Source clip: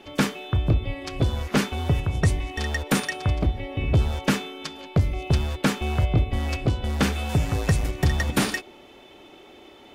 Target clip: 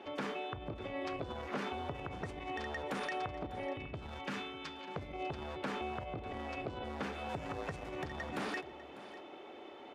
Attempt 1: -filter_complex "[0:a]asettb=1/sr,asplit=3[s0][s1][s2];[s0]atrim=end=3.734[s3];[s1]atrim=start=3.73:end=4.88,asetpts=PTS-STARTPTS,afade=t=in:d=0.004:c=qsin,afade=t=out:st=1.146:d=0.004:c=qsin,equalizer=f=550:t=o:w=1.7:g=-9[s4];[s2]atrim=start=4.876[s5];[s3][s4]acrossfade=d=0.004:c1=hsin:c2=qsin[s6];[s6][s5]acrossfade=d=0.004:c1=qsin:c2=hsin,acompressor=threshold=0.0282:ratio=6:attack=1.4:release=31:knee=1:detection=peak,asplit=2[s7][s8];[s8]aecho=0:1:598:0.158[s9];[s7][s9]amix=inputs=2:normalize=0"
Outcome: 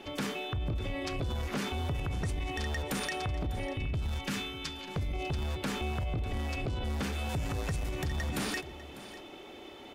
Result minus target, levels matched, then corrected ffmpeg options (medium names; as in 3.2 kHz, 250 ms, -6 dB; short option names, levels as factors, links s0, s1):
1 kHz band -6.5 dB
-filter_complex "[0:a]asettb=1/sr,asplit=3[s0][s1][s2];[s0]atrim=end=3.734[s3];[s1]atrim=start=3.73:end=4.88,asetpts=PTS-STARTPTS,afade=t=in:d=0.004:c=qsin,afade=t=out:st=1.146:d=0.004:c=qsin,equalizer=f=550:t=o:w=1.7:g=-9[s4];[s2]atrim=start=4.876[s5];[s3][s4]acrossfade=d=0.004:c1=hsin:c2=qsin[s6];[s6][s5]acrossfade=d=0.004:c1=qsin:c2=hsin,acompressor=threshold=0.0282:ratio=6:attack=1.4:release=31:knee=1:detection=peak,bandpass=f=790:t=q:w=0.58:csg=0,asplit=2[s7][s8];[s8]aecho=0:1:598:0.158[s9];[s7][s9]amix=inputs=2:normalize=0"